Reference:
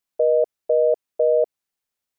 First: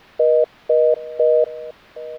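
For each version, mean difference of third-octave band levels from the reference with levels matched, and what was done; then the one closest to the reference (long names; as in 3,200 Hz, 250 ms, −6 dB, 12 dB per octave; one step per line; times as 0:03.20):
3.5 dB: background noise white −44 dBFS
high-frequency loss of the air 350 metres
single-tap delay 767 ms −17.5 dB
level +4 dB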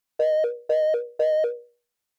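7.0 dB: mains-hum notches 60/120/180/240/300/360/420/480/540/600 Hz
in parallel at −3.5 dB: hard clipping −29.5 dBFS, distortion −6 dB
on the sum: pitch vibrato 8 Hz 18 cents
level −2.5 dB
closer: first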